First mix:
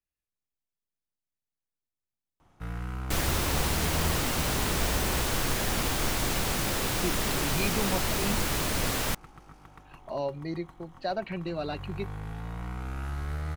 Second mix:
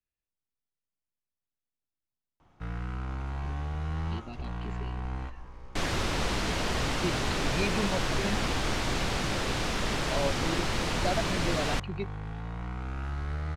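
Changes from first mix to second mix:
second sound: entry +2.65 s; master: add LPF 5500 Hz 12 dB/oct

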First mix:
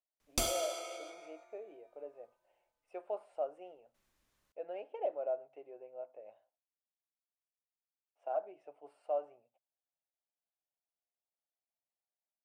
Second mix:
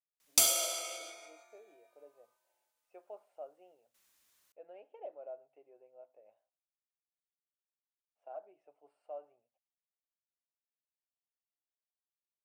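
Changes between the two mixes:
speech -10.0 dB; background: add tilt +3.5 dB/oct

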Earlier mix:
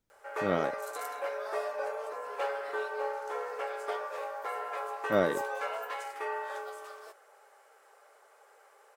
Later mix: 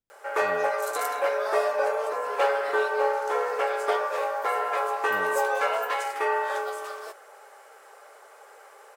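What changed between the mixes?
speech -11.5 dB; background +10.0 dB

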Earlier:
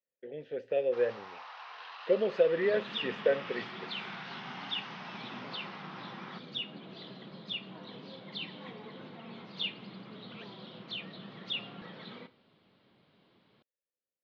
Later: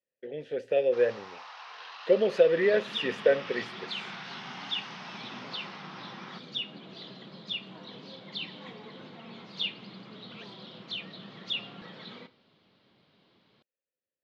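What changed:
speech +4.0 dB; master: remove air absorption 150 m

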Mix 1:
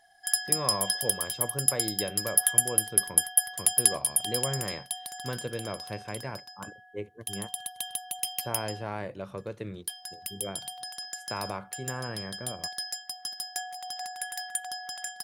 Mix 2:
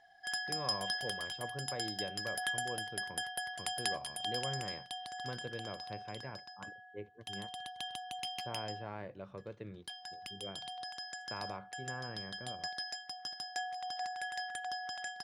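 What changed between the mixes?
speech -8.5 dB; master: add air absorption 130 m

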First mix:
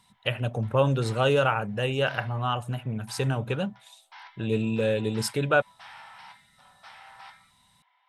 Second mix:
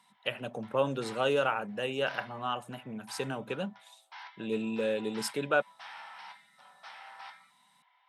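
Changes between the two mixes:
speech -5.0 dB; master: add HPF 180 Hz 24 dB/oct

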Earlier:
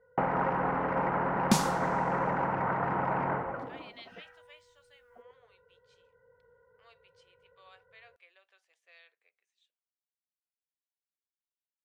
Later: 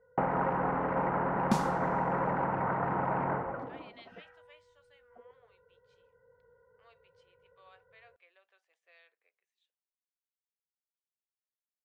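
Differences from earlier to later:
second sound -3.5 dB; master: add high shelf 2700 Hz -10 dB

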